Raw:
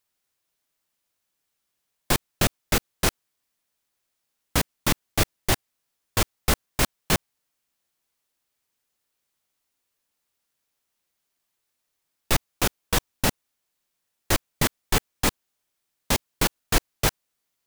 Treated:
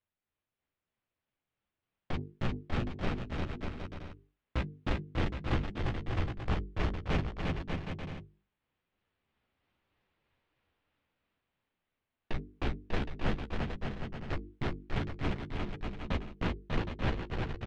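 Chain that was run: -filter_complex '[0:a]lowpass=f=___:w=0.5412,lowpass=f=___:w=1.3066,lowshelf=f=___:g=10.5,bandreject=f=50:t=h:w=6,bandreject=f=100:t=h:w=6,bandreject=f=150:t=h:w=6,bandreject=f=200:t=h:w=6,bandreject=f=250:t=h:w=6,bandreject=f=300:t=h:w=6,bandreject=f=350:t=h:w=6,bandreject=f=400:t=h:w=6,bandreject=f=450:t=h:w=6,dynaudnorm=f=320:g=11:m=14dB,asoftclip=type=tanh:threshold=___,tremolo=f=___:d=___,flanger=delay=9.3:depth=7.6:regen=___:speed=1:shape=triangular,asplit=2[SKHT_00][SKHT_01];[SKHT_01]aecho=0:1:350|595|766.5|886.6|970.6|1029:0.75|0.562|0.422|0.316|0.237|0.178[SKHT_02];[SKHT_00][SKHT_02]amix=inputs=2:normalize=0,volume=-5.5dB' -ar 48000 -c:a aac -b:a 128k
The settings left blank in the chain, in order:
3100, 3100, 330, -17dB, 3.1, 0.28, -15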